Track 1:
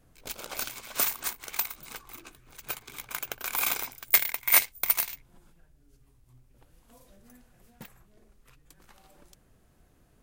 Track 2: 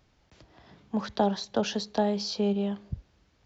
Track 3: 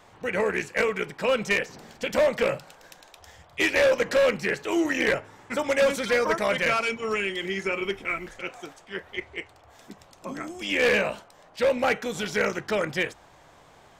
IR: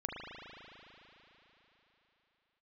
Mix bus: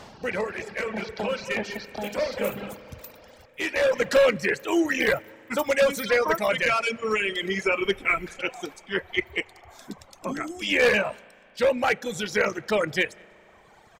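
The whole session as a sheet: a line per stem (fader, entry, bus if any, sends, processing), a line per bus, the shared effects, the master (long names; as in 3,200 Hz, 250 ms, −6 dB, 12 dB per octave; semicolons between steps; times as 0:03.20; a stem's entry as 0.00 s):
−18.0 dB, 1.45 s, no send, no echo send, no processing
−13.5 dB, 0.00 s, no send, no echo send, compressor on every frequency bin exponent 0.4
+2.5 dB, 0.00 s, send −14 dB, echo send −18.5 dB, automatic ducking −20 dB, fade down 0.60 s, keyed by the second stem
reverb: on, RT60 3.9 s, pre-delay 37 ms
echo: single-tap delay 195 ms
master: reverb reduction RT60 1.7 s; speech leveller within 4 dB 2 s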